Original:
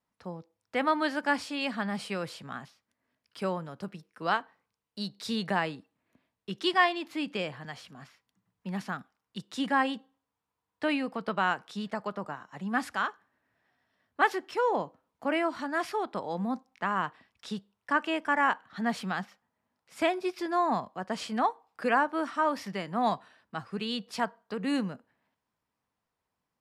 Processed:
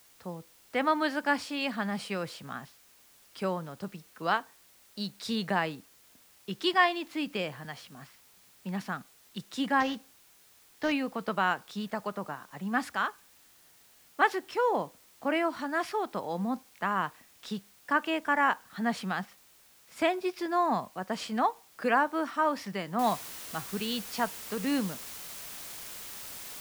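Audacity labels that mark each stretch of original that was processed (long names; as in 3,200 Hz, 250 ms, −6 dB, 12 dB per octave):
9.800000	10.920000	variable-slope delta modulation 32 kbit/s
22.990000	22.990000	noise floor change −60 dB −43 dB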